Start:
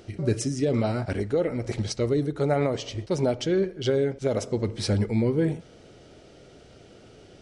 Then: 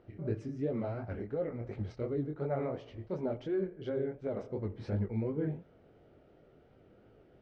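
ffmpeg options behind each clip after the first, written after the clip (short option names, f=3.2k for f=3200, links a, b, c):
-af "lowpass=1.7k,flanger=delay=18.5:depth=7.7:speed=2.8,volume=-7.5dB"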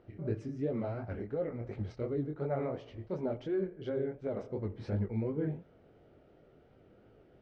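-af anull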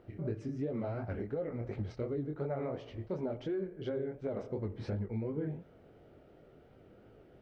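-af "acompressor=threshold=-35dB:ratio=6,volume=2.5dB"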